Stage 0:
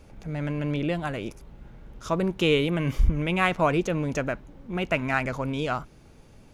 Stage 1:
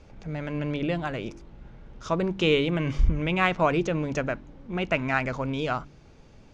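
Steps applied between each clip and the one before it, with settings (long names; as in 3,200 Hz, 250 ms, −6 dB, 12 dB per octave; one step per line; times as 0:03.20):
low-pass filter 6,700 Hz 24 dB per octave
hum removal 48.24 Hz, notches 7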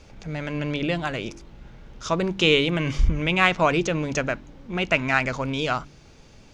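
high-shelf EQ 2,300 Hz +9.5 dB
level +1.5 dB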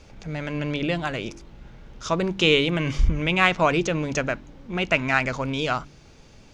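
no processing that can be heard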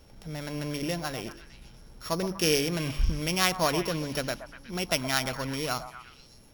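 samples sorted by size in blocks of 8 samples
echo through a band-pass that steps 121 ms, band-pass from 820 Hz, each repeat 0.7 octaves, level −8 dB
level −6 dB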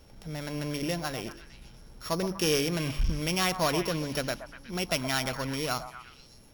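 gain into a clipping stage and back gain 20 dB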